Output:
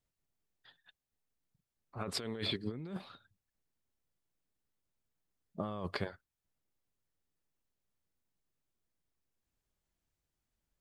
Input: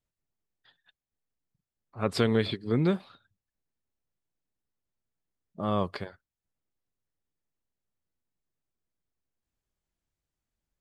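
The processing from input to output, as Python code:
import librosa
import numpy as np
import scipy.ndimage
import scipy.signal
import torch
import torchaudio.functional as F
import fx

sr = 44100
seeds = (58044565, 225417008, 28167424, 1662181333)

y = fx.low_shelf(x, sr, hz=200.0, db=-7.5, at=(1.98, 2.55))
y = fx.over_compress(y, sr, threshold_db=-34.0, ratio=-1.0)
y = y * 10.0 ** (-5.0 / 20.0)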